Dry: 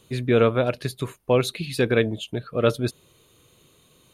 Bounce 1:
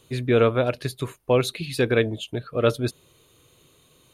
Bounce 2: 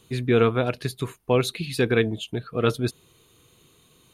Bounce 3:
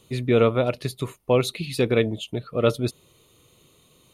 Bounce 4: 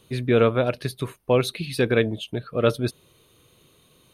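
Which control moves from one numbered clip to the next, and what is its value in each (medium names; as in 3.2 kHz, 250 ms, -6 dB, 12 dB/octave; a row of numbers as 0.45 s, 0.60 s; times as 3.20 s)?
band-stop, frequency: 200 Hz, 570 Hz, 1.6 kHz, 7.1 kHz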